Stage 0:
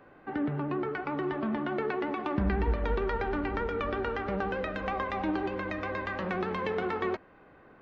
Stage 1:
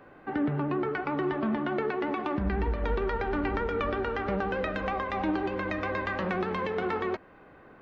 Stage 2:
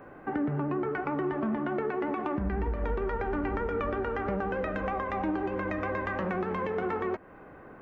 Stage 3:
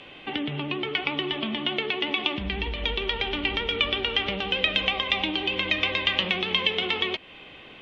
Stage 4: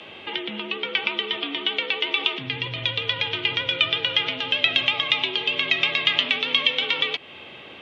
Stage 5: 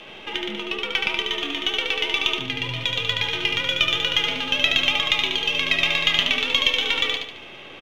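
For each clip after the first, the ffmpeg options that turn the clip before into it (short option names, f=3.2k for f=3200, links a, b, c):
-af "alimiter=limit=-22dB:level=0:latency=1:release=253,volume=3dB"
-af "equalizer=f=4.1k:t=o:w=1.2:g=-12.5,acompressor=threshold=-36dB:ratio=2,volume=4.5dB"
-af "aexciter=amount=15.7:drive=4.9:freq=2.4k,lowpass=f=3.3k:t=q:w=5.4,volume=-1.5dB"
-filter_complex "[0:a]acrossover=split=1200[a][b];[a]alimiter=level_in=9.5dB:limit=-24dB:level=0:latency=1:release=67,volume=-9.5dB[c];[c][b]amix=inputs=2:normalize=0,afreqshift=66,volume=4dB"
-af "aeval=exprs='if(lt(val(0),0),0.708*val(0),val(0))':c=same,aecho=1:1:73|146|219|292|365:0.596|0.25|0.105|0.0441|0.0185,volume=1dB"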